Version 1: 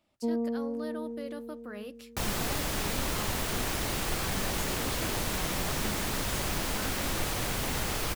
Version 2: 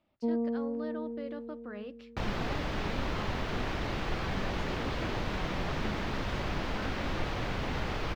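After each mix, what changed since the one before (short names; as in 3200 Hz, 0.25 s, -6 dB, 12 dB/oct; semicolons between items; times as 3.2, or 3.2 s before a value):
master: add air absorption 240 m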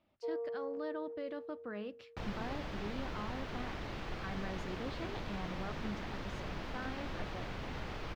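first sound: add rippled Chebyshev high-pass 350 Hz, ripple 9 dB; second sound -8.5 dB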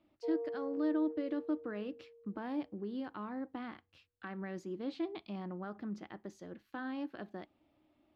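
speech: add bell 310 Hz +13.5 dB 0.37 oct; first sound: add steep low-pass 1000 Hz; second sound: muted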